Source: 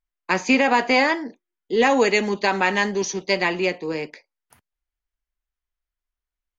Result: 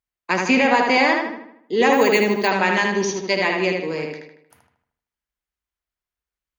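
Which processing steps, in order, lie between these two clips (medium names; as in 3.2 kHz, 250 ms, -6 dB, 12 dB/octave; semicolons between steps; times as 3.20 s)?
high-pass 60 Hz; filtered feedback delay 77 ms, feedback 49%, low-pass 4.1 kHz, level -3 dB; 1.93–2.51 s: careless resampling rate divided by 2×, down filtered, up hold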